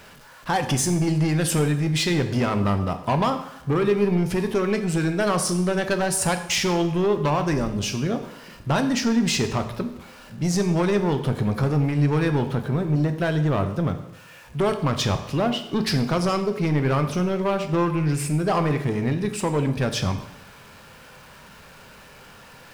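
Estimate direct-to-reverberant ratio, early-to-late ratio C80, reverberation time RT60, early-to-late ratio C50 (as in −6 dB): 7.0 dB, 12.5 dB, 0.80 s, 10.5 dB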